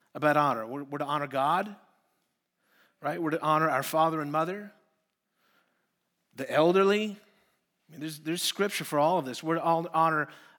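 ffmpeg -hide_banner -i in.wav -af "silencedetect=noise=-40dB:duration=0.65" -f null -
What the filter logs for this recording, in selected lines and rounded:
silence_start: 1.73
silence_end: 3.03 | silence_duration: 1.30
silence_start: 4.67
silence_end: 6.38 | silence_duration: 1.71
silence_start: 7.14
silence_end: 7.96 | silence_duration: 0.81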